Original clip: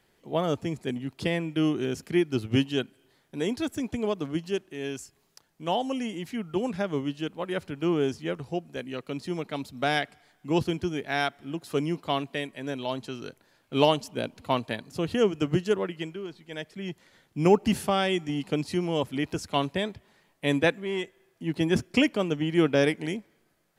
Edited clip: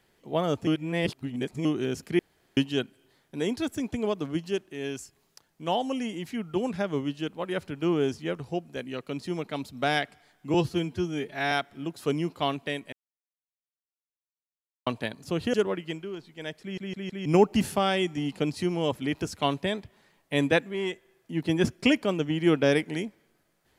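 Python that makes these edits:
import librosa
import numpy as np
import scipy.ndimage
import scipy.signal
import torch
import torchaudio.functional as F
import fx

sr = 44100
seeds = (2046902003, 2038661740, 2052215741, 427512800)

y = fx.edit(x, sr, fx.reverse_span(start_s=0.67, length_s=0.98),
    fx.room_tone_fill(start_s=2.19, length_s=0.38),
    fx.stretch_span(start_s=10.54, length_s=0.65, factor=1.5),
    fx.silence(start_s=12.6, length_s=1.94),
    fx.cut(start_s=15.21, length_s=0.44),
    fx.stutter_over(start_s=16.73, slice_s=0.16, count=4), tone=tone)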